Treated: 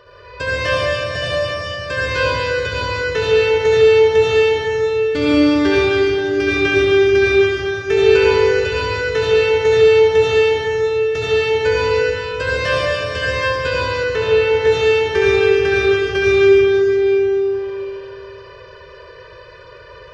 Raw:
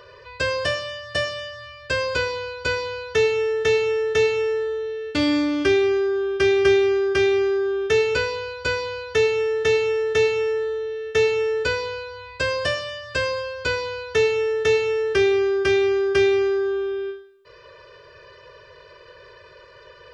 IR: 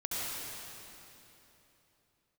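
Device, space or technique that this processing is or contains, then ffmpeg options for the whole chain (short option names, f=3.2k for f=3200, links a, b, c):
swimming-pool hall: -filter_complex "[1:a]atrim=start_sample=2205[a];[0:a][a]afir=irnorm=-1:irlink=0,highshelf=f=4.3k:g=-5.5,asettb=1/sr,asplit=3[b][c][d];[b]atrim=end=14.034[e];[c]atrim=start=14.03:end=14.67,asetpts=PTS-STARTPTS,afade=t=in:d=0.004:c=qsin,afade=t=out:st=0.636:d=0.004:c=qsin,acrossover=split=3400[f][g];[g]acompressor=threshold=-39dB:ratio=4:attack=1:release=60[h];[f][h]amix=inputs=2:normalize=0[i];[d]atrim=start=14.666[j];[e][i]acrossfade=d=0.004:c1=hsin:c2=qsin[k];[k][j]acrossfade=d=0.004:c1=qsin:c2=hsin,lowshelf=f=140:g=3.5,volume=2dB"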